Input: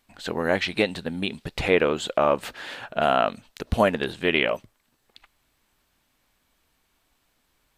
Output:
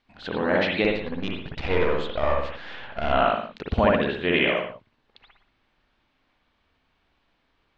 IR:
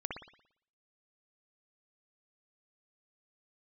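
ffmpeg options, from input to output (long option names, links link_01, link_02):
-filter_complex "[0:a]asettb=1/sr,asplit=3[link_01][link_02][link_03];[link_01]atrim=end=0.844[link_04];[link_02]atrim=start=0.84:end=3.13,asetpts=PTS-STARTPTS,afade=type=in:duration=0.004:curve=qsin,afade=type=out:start_time=2.286:duration=0.004:curve=qsin,aeval=exprs='if(lt(val(0),0),0.251*val(0),val(0))':channel_layout=same[link_05];[link_03]atrim=start=3.126[link_06];[link_04][link_05]acrossfade=duration=0.004:curve1=hsin:curve2=qsin[link_07];[link_07][link_06]acrossfade=duration=0.004:curve1=qsin:curve2=hsin,lowpass=frequency=4600:width=0.5412,lowpass=frequency=4600:width=1.3066[link_08];[1:a]atrim=start_sample=2205,afade=type=out:start_time=0.3:duration=0.01,atrim=end_sample=13671[link_09];[link_08][link_09]afir=irnorm=-1:irlink=0"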